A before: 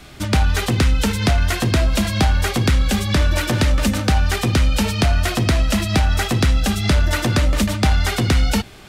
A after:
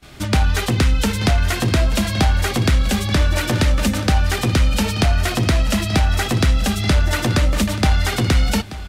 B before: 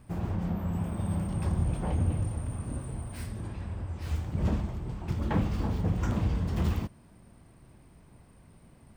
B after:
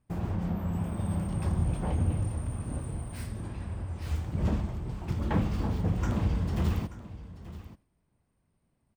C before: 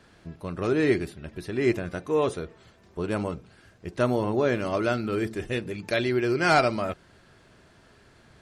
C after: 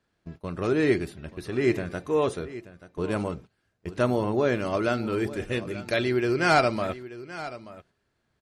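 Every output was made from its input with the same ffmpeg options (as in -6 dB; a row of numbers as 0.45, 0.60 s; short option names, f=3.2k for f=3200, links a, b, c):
-af "agate=range=-19dB:threshold=-42dB:ratio=16:detection=peak,aecho=1:1:882:0.168"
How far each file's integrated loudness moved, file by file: 0.0, 0.0, 0.0 LU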